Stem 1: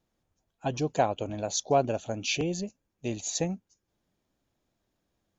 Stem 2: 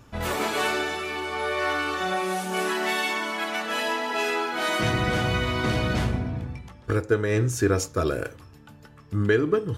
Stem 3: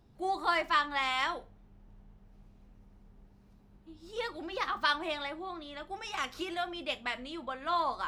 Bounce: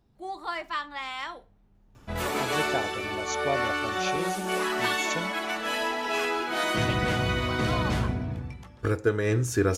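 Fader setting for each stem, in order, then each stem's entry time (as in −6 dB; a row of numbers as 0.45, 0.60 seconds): −5.5, −2.0, −4.0 decibels; 1.75, 1.95, 0.00 seconds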